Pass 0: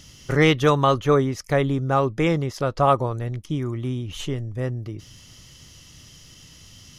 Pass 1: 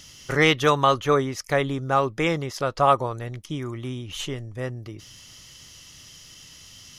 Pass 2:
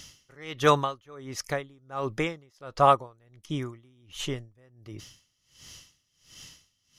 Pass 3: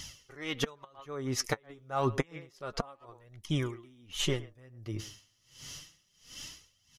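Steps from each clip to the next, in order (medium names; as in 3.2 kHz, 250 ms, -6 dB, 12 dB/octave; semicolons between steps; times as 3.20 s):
bass shelf 480 Hz -9 dB; trim +2.5 dB
logarithmic tremolo 1.4 Hz, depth 29 dB
speakerphone echo 110 ms, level -17 dB; inverted gate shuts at -17 dBFS, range -34 dB; flange 0.29 Hz, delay 0.9 ms, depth 9.1 ms, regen +34%; trim +6.5 dB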